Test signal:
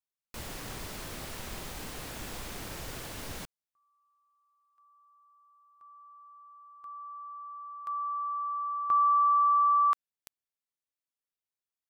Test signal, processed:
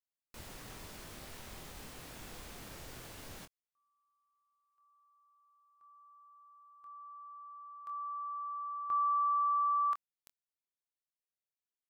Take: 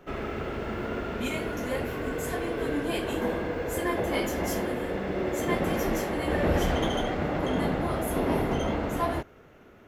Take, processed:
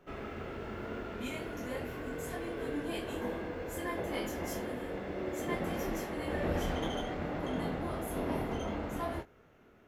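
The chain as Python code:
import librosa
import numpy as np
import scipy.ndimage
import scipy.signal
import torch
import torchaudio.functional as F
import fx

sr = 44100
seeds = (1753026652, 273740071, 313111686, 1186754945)

y = fx.doubler(x, sr, ms=24.0, db=-7.5)
y = y * librosa.db_to_amplitude(-9.0)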